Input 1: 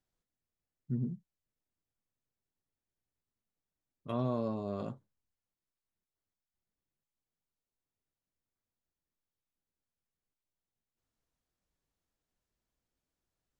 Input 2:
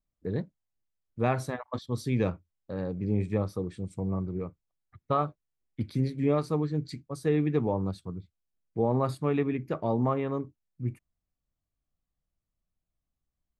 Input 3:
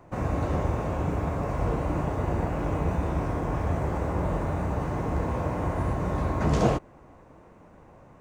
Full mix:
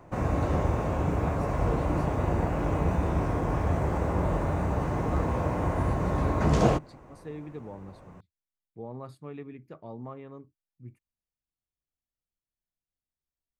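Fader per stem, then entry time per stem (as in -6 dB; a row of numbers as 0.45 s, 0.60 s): -14.5 dB, -14.0 dB, +0.5 dB; 0.00 s, 0.00 s, 0.00 s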